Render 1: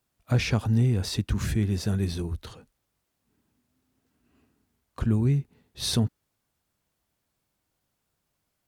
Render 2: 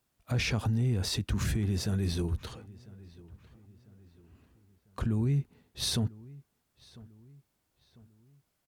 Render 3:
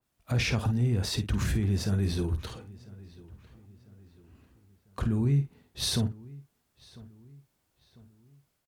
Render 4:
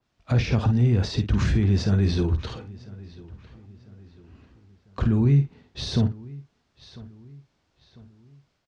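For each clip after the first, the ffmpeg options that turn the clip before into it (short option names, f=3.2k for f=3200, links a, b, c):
-filter_complex "[0:a]alimiter=limit=-21.5dB:level=0:latency=1:release=32,asplit=2[a][b];[b]adelay=998,lowpass=f=2.9k:p=1,volume=-21dB,asplit=2[c][d];[d]adelay=998,lowpass=f=2.9k:p=1,volume=0.45,asplit=2[e][f];[f]adelay=998,lowpass=f=2.9k:p=1,volume=0.45[g];[a][c][e][g]amix=inputs=4:normalize=0"
-filter_complex "[0:a]dynaudnorm=f=140:g=3:m=3.5dB,asplit=2[a][b];[b]adelay=50,volume=-10.5dB[c];[a][c]amix=inputs=2:normalize=0,adynamicequalizer=threshold=0.00562:dfrequency=2900:dqfactor=0.7:tfrequency=2900:tqfactor=0.7:attack=5:release=100:ratio=0.375:range=1.5:mode=cutabove:tftype=highshelf,volume=-1.5dB"
-filter_complex "[0:a]lowpass=f=5.8k:w=0.5412,lowpass=f=5.8k:w=1.3066,acrossover=split=650[a][b];[b]alimiter=level_in=7.5dB:limit=-24dB:level=0:latency=1:release=90,volume=-7.5dB[c];[a][c]amix=inputs=2:normalize=0,volume=6.5dB"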